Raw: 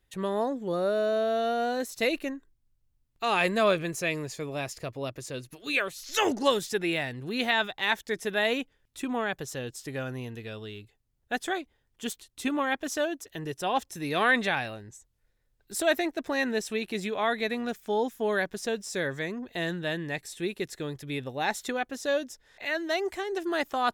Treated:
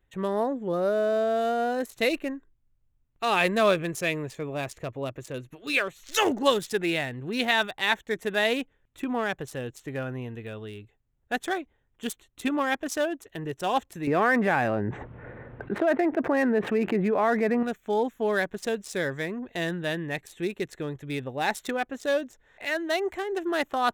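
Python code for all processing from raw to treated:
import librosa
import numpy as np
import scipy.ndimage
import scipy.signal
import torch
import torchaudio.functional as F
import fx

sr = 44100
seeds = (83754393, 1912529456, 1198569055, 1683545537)

y = fx.chain(x, sr, fx.bandpass_edges(low_hz=140.0, high_hz=2100.0),
    fx.air_absorb(metres=450.0),
    fx.env_flatten(amount_pct=70), at=(14.07, 17.63))
y = fx.wiener(y, sr, points=9)
y = fx.high_shelf(y, sr, hz=7700.0, db=6.0)
y = y * 10.0 ** (2.0 / 20.0)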